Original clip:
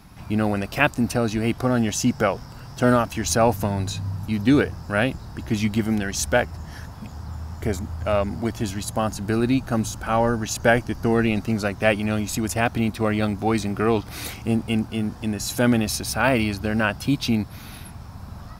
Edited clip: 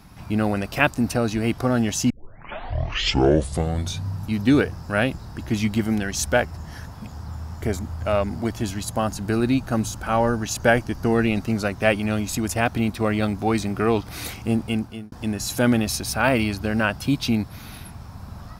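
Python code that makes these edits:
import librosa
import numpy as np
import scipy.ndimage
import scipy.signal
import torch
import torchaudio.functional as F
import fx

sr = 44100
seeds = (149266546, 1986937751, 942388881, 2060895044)

y = fx.edit(x, sr, fx.tape_start(start_s=2.1, length_s=1.95),
    fx.fade_out_span(start_s=14.53, length_s=0.59, curve='qsin'), tone=tone)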